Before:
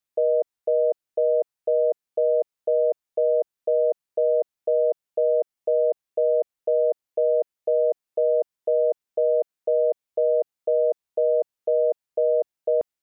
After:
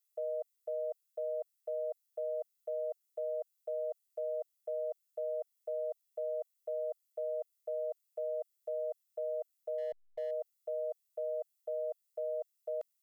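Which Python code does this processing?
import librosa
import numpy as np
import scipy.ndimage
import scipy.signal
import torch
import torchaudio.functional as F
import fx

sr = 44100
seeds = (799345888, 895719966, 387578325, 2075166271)

y = np.diff(x, prepend=0.0)
y = y + 0.74 * np.pad(y, (int(1.5 * sr / 1000.0), 0))[:len(y)]
y = fx.backlash(y, sr, play_db=-49.5, at=(9.78, 10.31))
y = F.gain(torch.from_numpy(y), 2.5).numpy()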